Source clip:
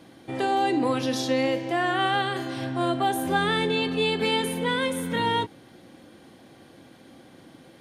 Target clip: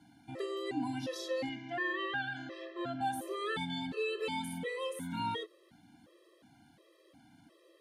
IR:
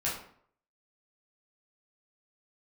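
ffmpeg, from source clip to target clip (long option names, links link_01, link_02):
-filter_complex "[0:a]asettb=1/sr,asplit=3[link_01][link_02][link_03];[link_01]atrim=end=1.494[link_04];[link_02]atrim=start=1.49:end=3.01,asetpts=PTS-STARTPTS,afade=type=in:duration=0.004:curve=qsin,afade=type=out:start_time=1.516:duration=0.004:curve=qsin,highpass=130,equalizer=frequency=560:width_type=q:width=4:gain=4,equalizer=frequency=870:width_type=q:width=4:gain=-9,equalizer=frequency=1700:width_type=q:width=4:gain=6,equalizer=frequency=4500:width_type=q:width=4:gain=-4,lowpass=frequency=5700:width=0.5412,lowpass=frequency=5700:width=1.3066[link_05];[link_03]atrim=start=3.006[link_06];[link_04][link_05]acrossfade=duration=0.004:curve1=hsin:curve2=qsin[link_07];[link_07][link_06]acrossfade=duration=0.004:curve1=qsin:curve2=hsin,afftfilt=real='re*gt(sin(2*PI*1.4*pts/sr)*(1-2*mod(floor(b*sr/1024/340),2)),0)':imag='im*gt(sin(2*PI*1.4*pts/sr)*(1-2*mod(floor(b*sr/1024/340),2)),0)':win_size=1024:overlap=0.75,volume=-9dB"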